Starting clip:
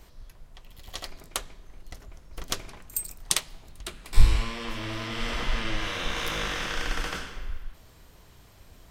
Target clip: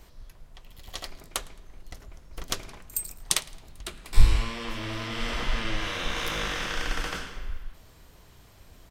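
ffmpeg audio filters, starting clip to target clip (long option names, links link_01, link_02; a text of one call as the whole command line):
ffmpeg -i in.wav -af "aecho=1:1:109|218:0.0631|0.0233" out.wav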